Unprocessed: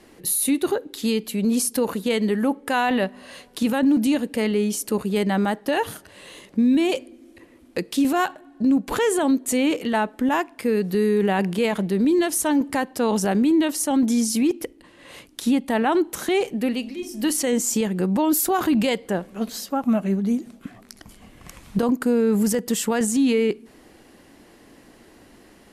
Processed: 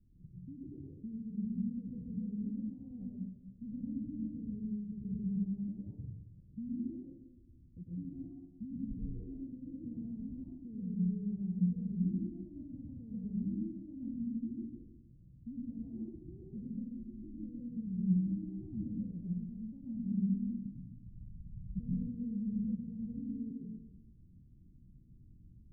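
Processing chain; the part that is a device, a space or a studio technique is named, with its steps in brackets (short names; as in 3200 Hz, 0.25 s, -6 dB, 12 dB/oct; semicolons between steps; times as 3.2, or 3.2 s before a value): club heard from the street (limiter -17 dBFS, peak gain reduction 6 dB; LPF 150 Hz 24 dB/oct; reverb RT60 0.80 s, pre-delay 95 ms, DRR -5.5 dB); gain -4 dB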